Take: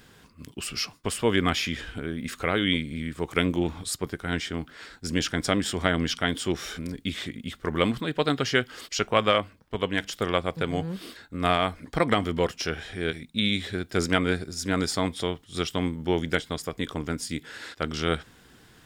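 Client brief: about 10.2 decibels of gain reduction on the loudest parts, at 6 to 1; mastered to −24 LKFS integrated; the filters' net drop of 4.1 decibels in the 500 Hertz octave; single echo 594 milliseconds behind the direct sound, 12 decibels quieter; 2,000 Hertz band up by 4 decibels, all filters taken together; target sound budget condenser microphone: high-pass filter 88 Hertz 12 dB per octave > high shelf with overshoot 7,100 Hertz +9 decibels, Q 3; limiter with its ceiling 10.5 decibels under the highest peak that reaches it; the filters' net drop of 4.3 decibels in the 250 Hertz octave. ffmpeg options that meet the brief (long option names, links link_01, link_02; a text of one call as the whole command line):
ffmpeg -i in.wav -af "equalizer=frequency=250:width_type=o:gain=-4.5,equalizer=frequency=500:width_type=o:gain=-4,equalizer=frequency=2000:width_type=o:gain=6,acompressor=threshold=-28dB:ratio=6,alimiter=limit=-22.5dB:level=0:latency=1,highpass=88,highshelf=frequency=7100:width_type=q:width=3:gain=9,aecho=1:1:594:0.251,volume=9dB" out.wav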